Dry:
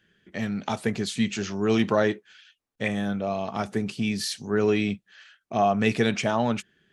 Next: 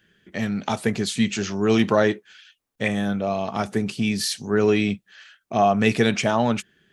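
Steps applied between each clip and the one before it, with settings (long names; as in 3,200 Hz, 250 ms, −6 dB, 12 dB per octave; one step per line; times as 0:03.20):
high-shelf EQ 10,000 Hz +5.5 dB
level +3.5 dB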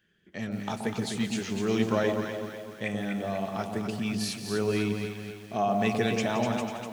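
delay that swaps between a low-pass and a high-pass 124 ms, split 840 Hz, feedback 69%, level −3 dB
feedback echo at a low word length 171 ms, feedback 55%, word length 6 bits, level −11.5 dB
level −9 dB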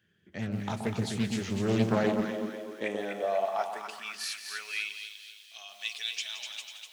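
high-pass filter sweep 88 Hz → 3,400 Hz, 0:01.51–0:05.13
highs frequency-modulated by the lows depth 0.41 ms
level −2 dB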